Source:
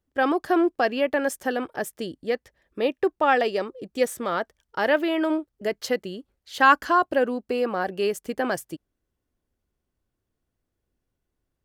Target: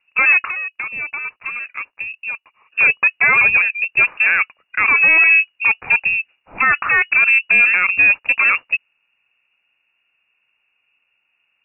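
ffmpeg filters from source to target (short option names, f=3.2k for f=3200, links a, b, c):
-filter_complex "[0:a]equalizer=f=160:w=0.35:g=10.5,asoftclip=type=tanh:threshold=-16dB,aemphasis=mode=production:type=bsi,lowpass=f=2.5k:t=q:w=0.5098,lowpass=f=2.5k:t=q:w=0.6013,lowpass=f=2.5k:t=q:w=0.9,lowpass=f=2.5k:t=q:w=2.563,afreqshift=-2900,asettb=1/sr,asplit=3[a][b][c];[a]atrim=end=0.474[d];[b]atrim=start=0.47:end=2.79,asetpts=PTS-STARTPTS,afade=t=in:d=0.004:c=qsin,afade=t=out:st=2.316:d=0.004:c=qsin,acompressor=threshold=-40dB:ratio=4[e];[c]atrim=start=2.786[f];[d][e]acrossfade=d=0.004:c1=hsin:c2=qsin[g];[g][f]acrossfade=d=0.004:c1=qsin:c2=hsin,alimiter=level_in=17.5dB:limit=-1dB:release=50:level=0:latency=1,volume=-4.5dB"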